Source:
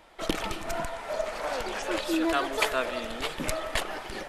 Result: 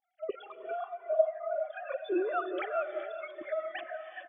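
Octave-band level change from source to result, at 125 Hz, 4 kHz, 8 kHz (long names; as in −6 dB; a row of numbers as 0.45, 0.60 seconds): below −35 dB, −19.5 dB, below −40 dB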